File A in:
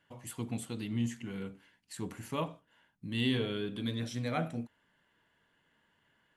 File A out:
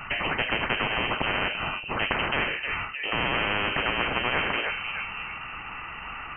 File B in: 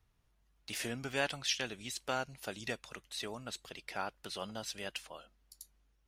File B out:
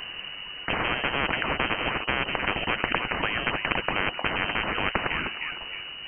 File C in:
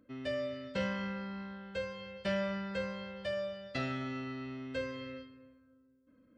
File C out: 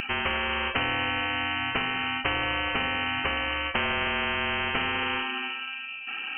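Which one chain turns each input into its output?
frequency inversion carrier 2.9 kHz; thinning echo 308 ms, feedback 32%, high-pass 770 Hz, level -22.5 dB; spectrum-flattening compressor 10:1; normalise loudness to -27 LUFS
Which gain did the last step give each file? +9.0 dB, +12.0 dB, +10.5 dB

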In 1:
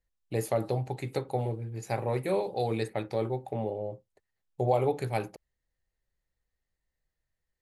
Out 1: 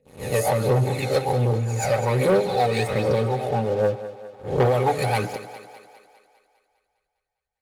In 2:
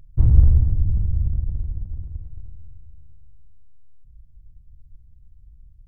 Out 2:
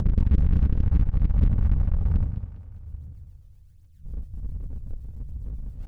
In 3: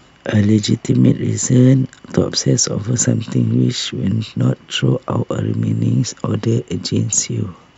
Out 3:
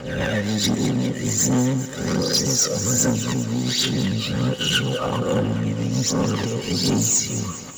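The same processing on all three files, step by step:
reverse spectral sustain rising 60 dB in 0.56 s; dynamic bell 110 Hz, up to -7 dB, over -27 dBFS, Q 0.91; rotary cabinet horn 7.5 Hz; feedback comb 510 Hz, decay 0.26 s, harmonics all, mix 50%; compression 3:1, threshold -30 dBFS; phaser 1.3 Hz, delay 1.7 ms, feedback 58%; waveshaping leveller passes 3; bass shelf 160 Hz -6 dB; comb of notches 340 Hz; thinning echo 202 ms, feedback 58%, high-pass 210 Hz, level -12.5 dB; peak normalisation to -9 dBFS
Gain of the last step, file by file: +7.0 dB, +9.0 dB, +2.0 dB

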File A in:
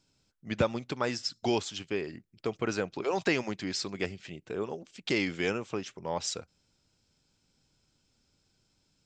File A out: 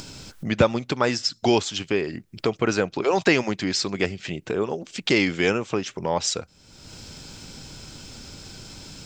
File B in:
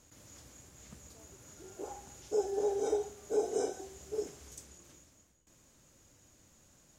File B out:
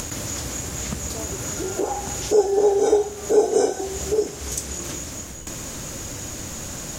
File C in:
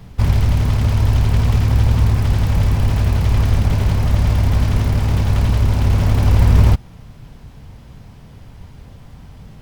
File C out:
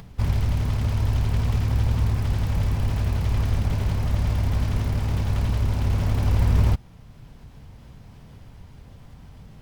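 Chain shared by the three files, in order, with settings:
upward compressor, threshold -31 dBFS; normalise loudness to -24 LUFS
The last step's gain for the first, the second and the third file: +9.0 dB, +14.0 dB, -7.5 dB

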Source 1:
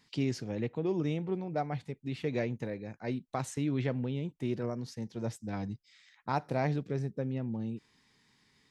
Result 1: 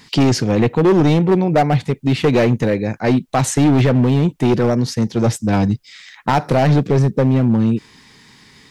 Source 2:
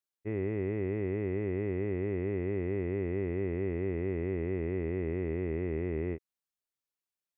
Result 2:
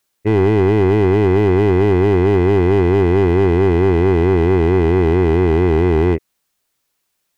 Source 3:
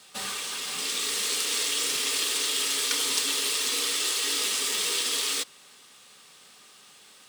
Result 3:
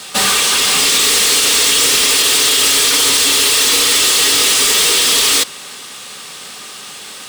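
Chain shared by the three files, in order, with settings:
peak limiter -21 dBFS; overload inside the chain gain 30.5 dB; peak normalisation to -9 dBFS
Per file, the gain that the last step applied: +21.5 dB, +21.5 dB, +21.5 dB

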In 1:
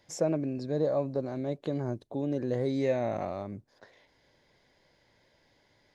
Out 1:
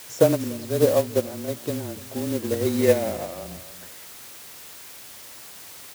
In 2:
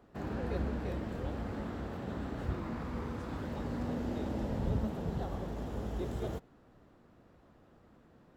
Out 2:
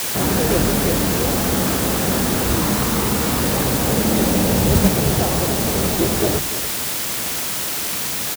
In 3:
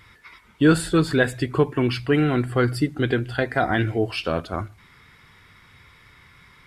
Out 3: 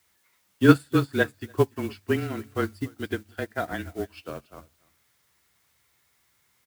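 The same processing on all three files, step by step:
companding laws mixed up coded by mu; hum notches 60/120/180/240/300 Hz; delay 291 ms -13.5 dB; added noise white -41 dBFS; frequency shift -25 Hz; high-pass 68 Hz; upward expansion 2.5:1, over -32 dBFS; peak normalisation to -3 dBFS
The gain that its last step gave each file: +12.0 dB, +20.5 dB, +3.0 dB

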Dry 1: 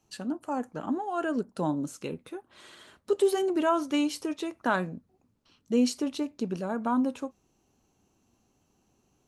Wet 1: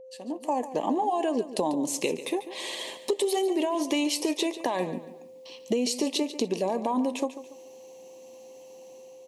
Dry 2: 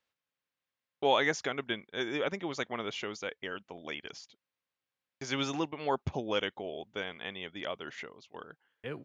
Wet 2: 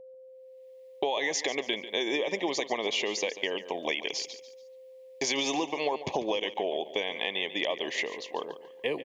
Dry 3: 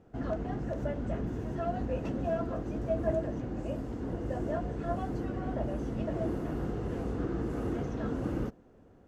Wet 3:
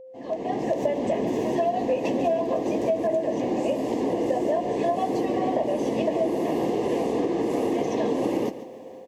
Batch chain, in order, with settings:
fade-in on the opening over 0.86 s; level rider gain up to 5.5 dB; high-pass 380 Hz 12 dB/octave; whistle 520 Hz -56 dBFS; peak limiter -20 dBFS; Butterworth band-stop 1.4 kHz, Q 1.7; compression, threshold -36 dBFS; feedback delay 143 ms, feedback 34%, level -13.5 dB; peak normalisation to -12 dBFS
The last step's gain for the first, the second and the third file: +12.0 dB, +10.0 dB, +14.5 dB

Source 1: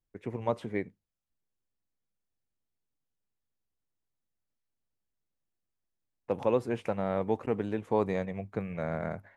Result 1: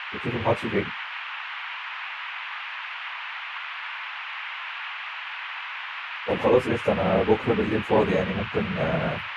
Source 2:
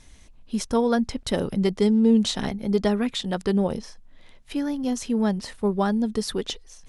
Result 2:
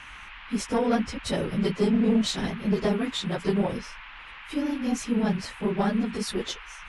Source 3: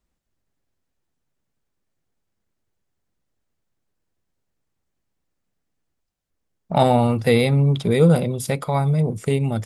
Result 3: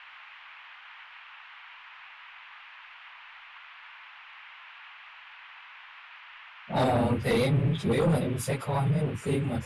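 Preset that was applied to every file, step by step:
phase randomisation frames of 50 ms; Chebyshev shaper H 5 -11 dB, 6 -21 dB, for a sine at -2.5 dBFS; band noise 880–2900 Hz -35 dBFS; normalise loudness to -27 LUFS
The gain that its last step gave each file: +0.5 dB, -9.5 dB, -13.5 dB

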